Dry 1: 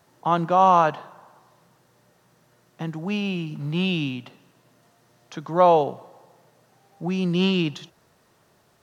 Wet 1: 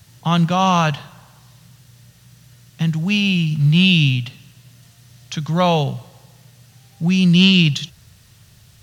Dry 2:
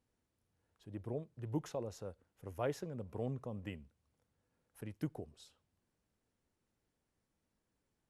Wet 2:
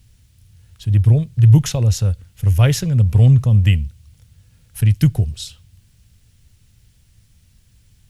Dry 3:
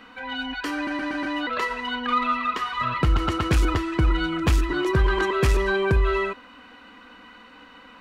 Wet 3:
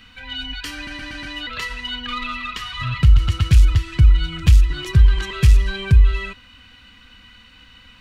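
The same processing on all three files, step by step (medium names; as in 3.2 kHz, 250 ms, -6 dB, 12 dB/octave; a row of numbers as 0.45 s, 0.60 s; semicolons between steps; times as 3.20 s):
FFT filter 110 Hz 0 dB, 320 Hz -25 dB, 1 kHz -24 dB, 3 kHz -8 dB; in parallel at +2 dB: compression, threshold -29 dBFS; on the sum: peak normalisation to -1.5 dBFS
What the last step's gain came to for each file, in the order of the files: +15.0 dB, +29.5 dB, +7.0 dB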